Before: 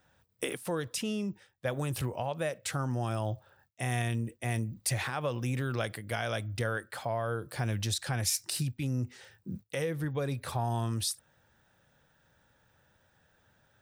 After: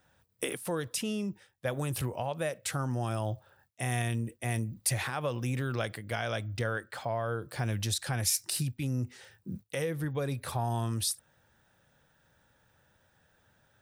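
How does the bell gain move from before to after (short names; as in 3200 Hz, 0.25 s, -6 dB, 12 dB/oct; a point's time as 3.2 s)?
bell 11000 Hz 0.63 oct
5.23 s +4.5 dB
6.21 s -7 dB
7.37 s -7 dB
7.81 s +4 dB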